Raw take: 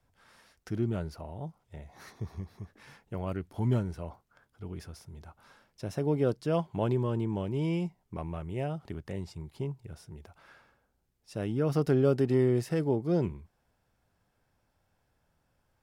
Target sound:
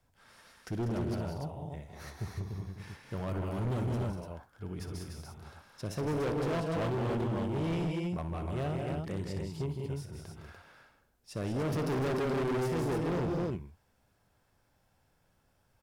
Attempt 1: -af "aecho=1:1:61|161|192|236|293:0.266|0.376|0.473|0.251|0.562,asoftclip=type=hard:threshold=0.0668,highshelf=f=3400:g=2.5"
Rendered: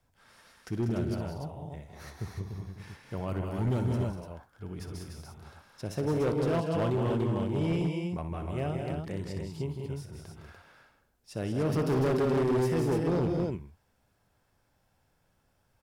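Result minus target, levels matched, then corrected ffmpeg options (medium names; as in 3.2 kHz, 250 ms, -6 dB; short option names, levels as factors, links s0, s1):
hard clipper: distortion -5 dB
-af "aecho=1:1:61|161|192|236|293:0.266|0.376|0.473|0.251|0.562,asoftclip=type=hard:threshold=0.0335,highshelf=f=3400:g=2.5"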